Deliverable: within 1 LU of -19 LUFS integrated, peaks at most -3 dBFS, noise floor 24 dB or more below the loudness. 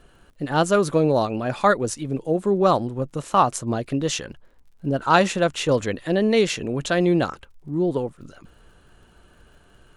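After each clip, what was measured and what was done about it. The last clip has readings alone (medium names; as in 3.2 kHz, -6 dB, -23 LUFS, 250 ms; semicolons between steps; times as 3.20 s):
tick rate 51 per s; loudness -22.0 LUFS; peak level -3.0 dBFS; loudness target -19.0 LUFS
-> de-click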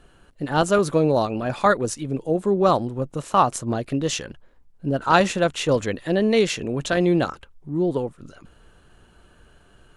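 tick rate 0.10 per s; loudness -22.0 LUFS; peak level -3.0 dBFS; loudness target -19.0 LUFS
-> trim +3 dB; peak limiter -3 dBFS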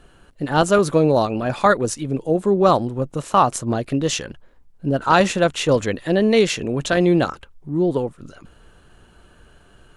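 loudness -19.5 LUFS; peak level -3.0 dBFS; noise floor -52 dBFS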